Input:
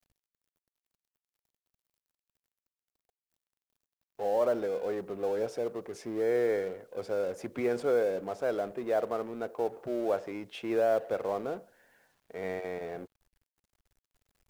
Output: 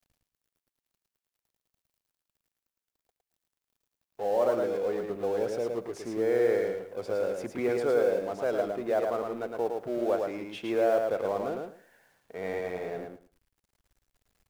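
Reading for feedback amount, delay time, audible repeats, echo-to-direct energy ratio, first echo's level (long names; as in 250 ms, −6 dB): 17%, 110 ms, 3, −4.0 dB, −4.0 dB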